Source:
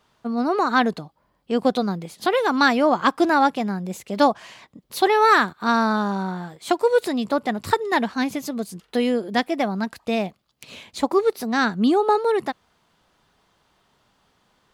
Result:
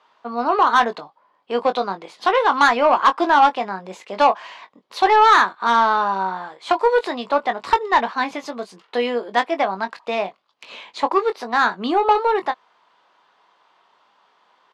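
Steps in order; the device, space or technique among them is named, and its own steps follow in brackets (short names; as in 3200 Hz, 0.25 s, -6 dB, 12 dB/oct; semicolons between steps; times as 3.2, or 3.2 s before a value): intercom (BPF 490–3900 Hz; bell 1000 Hz +6.5 dB 0.49 oct; soft clip -11 dBFS, distortion -15 dB; doubler 21 ms -9 dB); gain +4 dB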